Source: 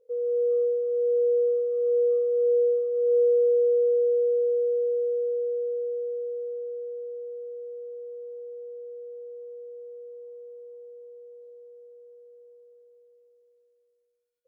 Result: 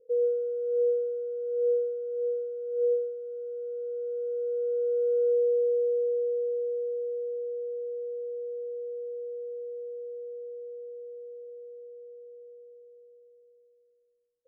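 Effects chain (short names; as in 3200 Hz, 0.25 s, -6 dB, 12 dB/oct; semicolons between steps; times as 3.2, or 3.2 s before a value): Chebyshev low-pass 530 Hz, order 3; negative-ratio compressor -27 dBFS, ratio -0.5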